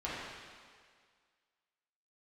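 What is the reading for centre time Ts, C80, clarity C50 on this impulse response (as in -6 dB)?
122 ms, -0.5 dB, -2.5 dB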